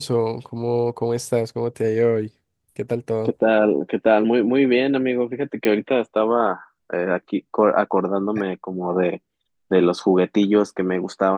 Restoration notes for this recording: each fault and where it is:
0:05.65: click −8 dBFS

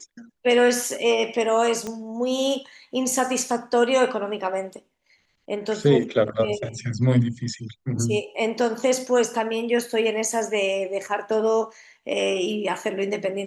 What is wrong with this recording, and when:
0:01.87: click −18 dBFS

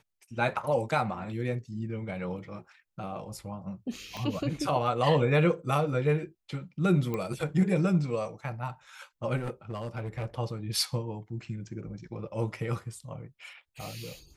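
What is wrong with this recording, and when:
0:04.17: click
0:07.14: click −20 dBFS
0:09.36–0:10.26: clipping −29 dBFS

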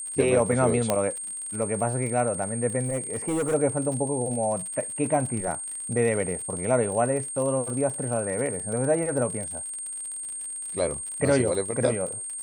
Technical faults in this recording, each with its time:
surface crackle 60 per second −33 dBFS
whistle 8,600 Hz −32 dBFS
0:00.90: click −8 dBFS
0:02.84–0:03.55: clipping −22.5 dBFS

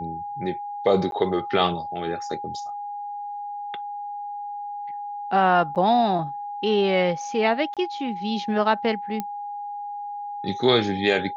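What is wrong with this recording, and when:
whistle 820 Hz −30 dBFS
0:01.11–0:01.12: drop-out 12 ms
0:05.75–0:05.76: drop-out 8.1 ms
0:07.74–0:07.77: drop-out 27 ms
0:09.20: click −14 dBFS

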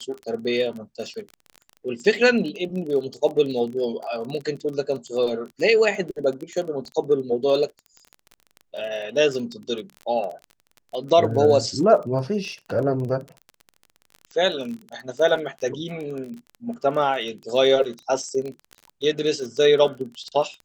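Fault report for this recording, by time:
surface crackle 24 per second −30 dBFS

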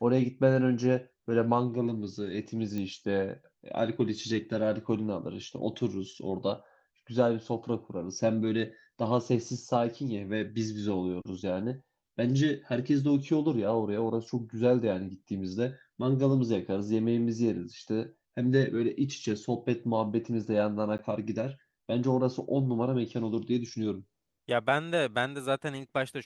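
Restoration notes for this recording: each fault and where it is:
0:02.78: click −23 dBFS
0:20.98–0:20.99: drop-out 9.9 ms

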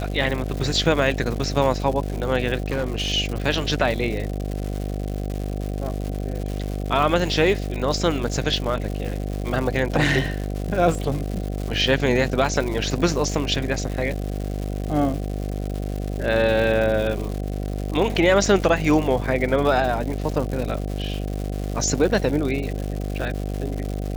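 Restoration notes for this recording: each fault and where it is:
mains buzz 50 Hz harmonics 15 −27 dBFS
surface crackle 250 per second −28 dBFS
0:02.70–0:03.11: clipping −19.5 dBFS

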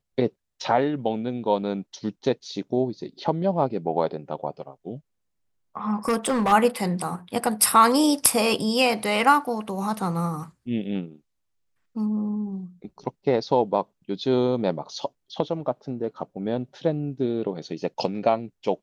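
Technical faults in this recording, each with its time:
0:06.08–0:06.53: clipping −18 dBFS

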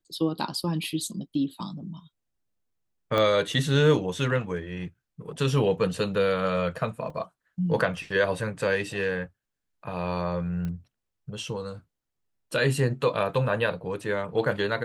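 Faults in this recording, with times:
0:03.18: click −13 dBFS
0:07.10: drop-out 2.9 ms
0:10.65: click −22 dBFS

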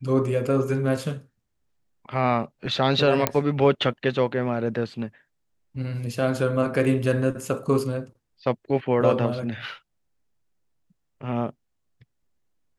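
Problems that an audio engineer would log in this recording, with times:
0:03.27: click −4 dBFS

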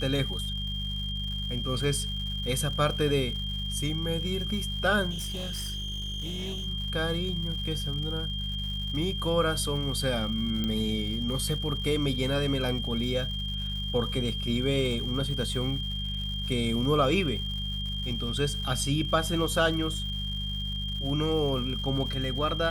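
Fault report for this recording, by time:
surface crackle 210 per second −38 dBFS
mains hum 50 Hz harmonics 4 −34 dBFS
whistle 3,200 Hz −34 dBFS
0:05.10–0:06.67: clipping −30.5 dBFS
0:10.64: click −18 dBFS

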